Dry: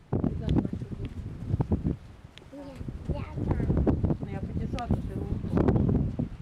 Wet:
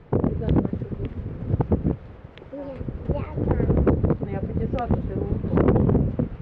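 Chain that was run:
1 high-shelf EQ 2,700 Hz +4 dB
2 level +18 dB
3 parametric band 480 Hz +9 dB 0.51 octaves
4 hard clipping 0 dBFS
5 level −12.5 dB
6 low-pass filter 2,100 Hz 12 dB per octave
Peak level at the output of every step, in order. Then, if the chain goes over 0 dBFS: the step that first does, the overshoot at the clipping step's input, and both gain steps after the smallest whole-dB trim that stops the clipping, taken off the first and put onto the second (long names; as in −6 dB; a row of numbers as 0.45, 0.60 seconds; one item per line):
−15.0, +3.0, +9.0, 0.0, −12.5, −12.0 dBFS
step 2, 9.0 dB
step 2 +9 dB, step 5 −3.5 dB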